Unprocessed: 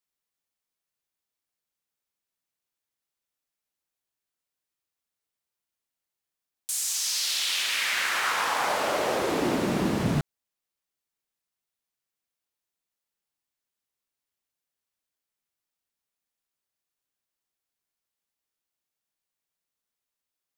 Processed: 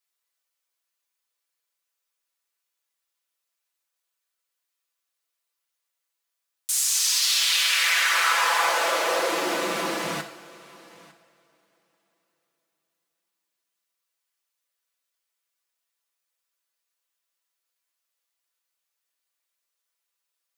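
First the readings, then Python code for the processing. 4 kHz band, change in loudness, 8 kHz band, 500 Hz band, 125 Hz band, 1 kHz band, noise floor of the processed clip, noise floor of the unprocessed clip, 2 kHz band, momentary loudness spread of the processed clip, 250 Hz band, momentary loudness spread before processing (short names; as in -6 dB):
+5.5 dB, +4.5 dB, +5.5 dB, +1.0 dB, -14.5 dB, +4.0 dB, -82 dBFS, under -85 dBFS, +5.5 dB, 10 LU, -7.0 dB, 4 LU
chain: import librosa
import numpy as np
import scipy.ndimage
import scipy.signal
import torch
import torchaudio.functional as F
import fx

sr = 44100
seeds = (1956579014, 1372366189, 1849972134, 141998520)

p1 = scipy.signal.sosfilt(scipy.signal.butter(2, 570.0, 'highpass', fs=sr, output='sos'), x)
p2 = fx.peak_eq(p1, sr, hz=790.0, db=-6.0, octaves=0.21)
p3 = p2 + 0.65 * np.pad(p2, (int(6.0 * sr / 1000.0), 0))[:len(p2)]
p4 = p3 + fx.echo_single(p3, sr, ms=902, db=-21.5, dry=0)
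p5 = fx.rev_double_slope(p4, sr, seeds[0], early_s=0.51, late_s=4.1, knee_db=-22, drr_db=6.0)
y = F.gain(torch.from_numpy(p5), 3.0).numpy()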